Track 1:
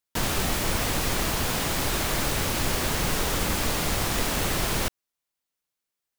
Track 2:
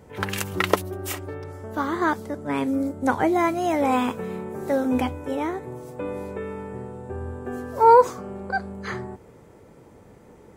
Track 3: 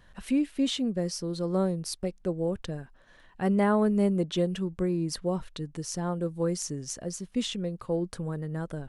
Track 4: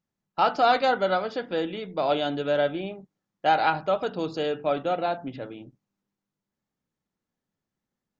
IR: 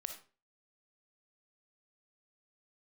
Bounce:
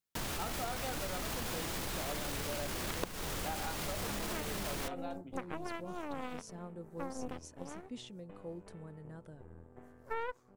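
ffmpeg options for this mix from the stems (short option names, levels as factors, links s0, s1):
-filter_complex "[0:a]alimiter=limit=0.0794:level=0:latency=1:release=16,volume=0.531[s0];[1:a]equalizer=f=100:w=0.36:g=5.5,aeval=exprs='0.794*(cos(1*acos(clip(val(0)/0.794,-1,1)))-cos(1*PI/2))+0.224*(cos(3*acos(clip(val(0)/0.794,-1,1)))-cos(3*PI/2))+0.126*(cos(4*acos(clip(val(0)/0.794,-1,1)))-cos(4*PI/2))+0.00631*(cos(8*acos(clip(val(0)/0.794,-1,1)))-cos(8*PI/2))':c=same,adelay=2300,volume=0.266[s1];[2:a]adelay=550,volume=0.15[s2];[3:a]volume=0.141,asplit=2[s3][s4];[s4]apad=whole_len=415959[s5];[s2][s5]sidechaincompress=threshold=0.00501:ratio=8:attack=16:release=390[s6];[s0][s1][s6][s3]amix=inputs=4:normalize=0,acompressor=threshold=0.02:ratio=6"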